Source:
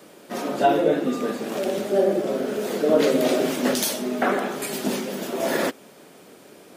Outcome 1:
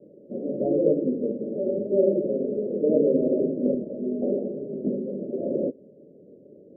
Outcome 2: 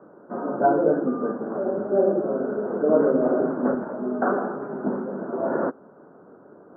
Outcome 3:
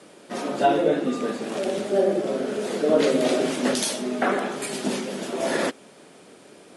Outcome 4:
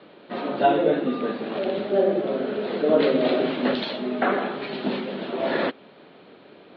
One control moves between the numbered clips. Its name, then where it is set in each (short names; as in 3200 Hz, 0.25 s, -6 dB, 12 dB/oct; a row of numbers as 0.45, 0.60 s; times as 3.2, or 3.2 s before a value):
Chebyshev low-pass, frequency: 580, 1500, 11000, 4200 Hz